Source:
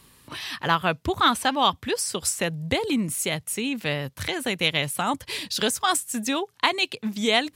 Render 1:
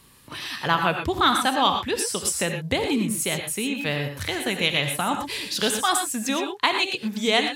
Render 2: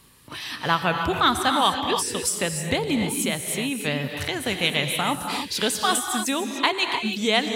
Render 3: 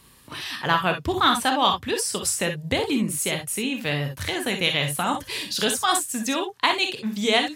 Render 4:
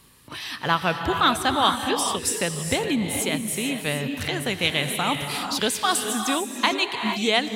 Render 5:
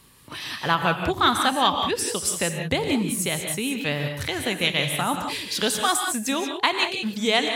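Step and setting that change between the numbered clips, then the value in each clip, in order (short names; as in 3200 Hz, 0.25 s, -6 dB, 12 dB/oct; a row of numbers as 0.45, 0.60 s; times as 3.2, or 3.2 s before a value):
non-linear reverb, gate: 140, 330, 80, 480, 210 ms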